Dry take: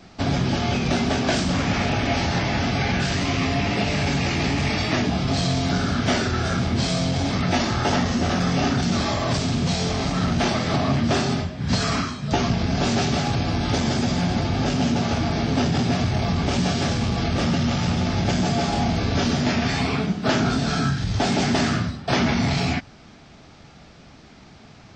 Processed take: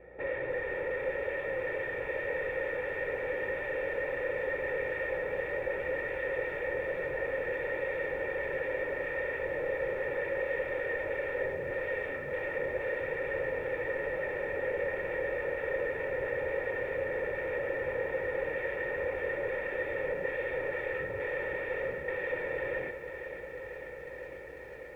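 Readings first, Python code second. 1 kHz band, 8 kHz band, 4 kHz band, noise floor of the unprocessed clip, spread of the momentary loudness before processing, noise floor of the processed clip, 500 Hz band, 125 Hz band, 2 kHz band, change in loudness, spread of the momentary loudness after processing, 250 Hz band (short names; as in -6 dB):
-17.0 dB, under -35 dB, under -25 dB, -47 dBFS, 2 LU, -43 dBFS, -3.0 dB, -27.5 dB, -5.0 dB, -11.5 dB, 2 LU, -25.5 dB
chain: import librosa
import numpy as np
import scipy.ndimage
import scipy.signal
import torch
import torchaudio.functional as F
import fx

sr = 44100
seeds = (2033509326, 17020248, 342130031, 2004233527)

p1 = scipy.signal.medfilt(x, 15)
p2 = fx.low_shelf(p1, sr, hz=130.0, db=-12.0)
p3 = fx.rev_gated(p2, sr, seeds[0], gate_ms=130, shape='rising', drr_db=1.0)
p4 = fx.rider(p3, sr, range_db=10, speed_s=0.5)
p5 = p3 + F.gain(torch.from_numpy(p4), 0.0).numpy()
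p6 = fx.low_shelf(p5, sr, hz=300.0, db=-5.0)
p7 = fx.add_hum(p6, sr, base_hz=60, snr_db=28)
p8 = 10.0 ** (-22.5 / 20.0) * (np.abs((p7 / 10.0 ** (-22.5 / 20.0) + 3.0) % 4.0 - 2.0) - 1.0)
p9 = fx.quant_companded(p8, sr, bits=6)
p10 = fx.formant_cascade(p9, sr, vowel='e')
p11 = p10 + 0.67 * np.pad(p10, (int(2.2 * sr / 1000.0), 0))[:len(p10)]
p12 = p11 + fx.echo_diffused(p11, sr, ms=1966, feedback_pct=47, wet_db=-16.0, dry=0)
p13 = fx.echo_crushed(p12, sr, ms=497, feedback_pct=80, bits=11, wet_db=-11)
y = F.gain(torch.from_numpy(p13), 2.5).numpy()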